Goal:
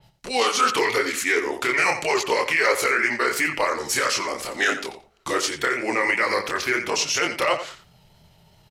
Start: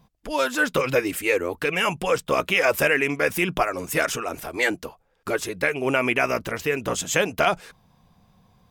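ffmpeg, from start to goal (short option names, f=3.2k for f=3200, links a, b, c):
-filter_complex "[0:a]highshelf=f=11k:g=4.5,bandreject=f=83.1:t=h:w=4,bandreject=f=166.2:t=h:w=4,bandreject=f=249.3:t=h:w=4,acrossover=split=410|1200|7800[a][b][c][d];[a]acompressor=threshold=-46dB:ratio=5[e];[c]crystalizer=i=3.5:c=0[f];[e][b][f][d]amix=inputs=4:normalize=0,alimiter=limit=-11.5dB:level=0:latency=1:release=29,acontrast=44,flanger=delay=20:depth=6.5:speed=2.9,asetrate=37084,aresample=44100,atempo=1.18921,asplit=2[g][h];[h]adelay=88,lowpass=f=4.8k:p=1,volume=-11dB,asplit=2[i][j];[j]adelay=88,lowpass=f=4.8k:p=1,volume=0.17[k];[g][i][k]amix=inputs=3:normalize=0,adynamicequalizer=threshold=0.0141:dfrequency=4400:dqfactor=0.7:tfrequency=4400:tqfactor=0.7:attack=5:release=100:ratio=0.375:range=3:mode=cutabove:tftype=highshelf"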